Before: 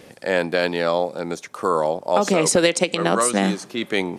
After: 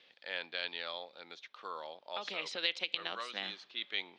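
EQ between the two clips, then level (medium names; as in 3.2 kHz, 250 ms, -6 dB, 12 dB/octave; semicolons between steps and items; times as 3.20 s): band-pass filter 3.6 kHz, Q 2.9; distance through air 240 m; 0.0 dB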